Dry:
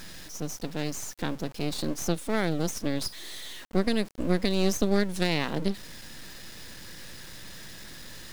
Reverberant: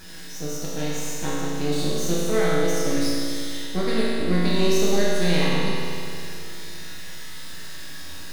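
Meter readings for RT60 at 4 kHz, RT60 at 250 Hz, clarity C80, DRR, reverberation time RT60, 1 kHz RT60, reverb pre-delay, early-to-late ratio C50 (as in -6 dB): 2.5 s, 2.6 s, -2.0 dB, -8.5 dB, 2.6 s, 2.6 s, 5 ms, -3.5 dB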